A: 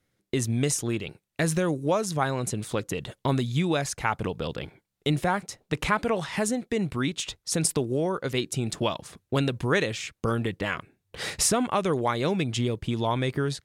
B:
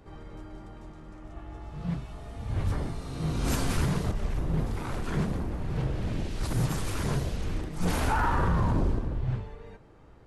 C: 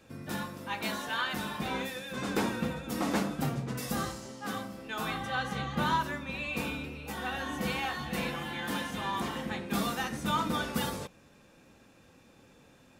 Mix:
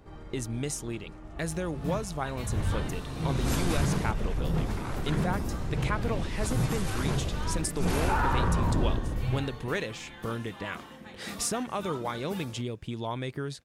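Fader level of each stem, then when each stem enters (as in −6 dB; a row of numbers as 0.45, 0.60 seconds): −7.5, −0.5, −11.0 decibels; 0.00, 0.00, 1.55 seconds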